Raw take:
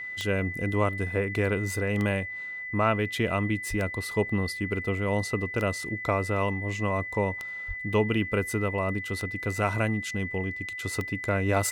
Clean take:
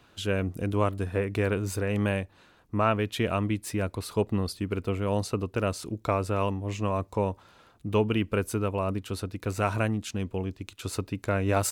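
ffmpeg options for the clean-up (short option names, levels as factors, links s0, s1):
-filter_complex "[0:a]adeclick=t=4,bandreject=f=2000:w=30,asplit=3[s0][s1][s2];[s0]afade=t=out:st=3.69:d=0.02[s3];[s1]highpass=f=140:w=0.5412,highpass=f=140:w=1.3066,afade=t=in:st=3.69:d=0.02,afade=t=out:st=3.81:d=0.02[s4];[s2]afade=t=in:st=3.81:d=0.02[s5];[s3][s4][s5]amix=inputs=3:normalize=0,asplit=3[s6][s7][s8];[s6]afade=t=out:st=7.67:d=0.02[s9];[s7]highpass=f=140:w=0.5412,highpass=f=140:w=1.3066,afade=t=in:st=7.67:d=0.02,afade=t=out:st=7.79:d=0.02[s10];[s8]afade=t=in:st=7.79:d=0.02[s11];[s9][s10][s11]amix=inputs=3:normalize=0"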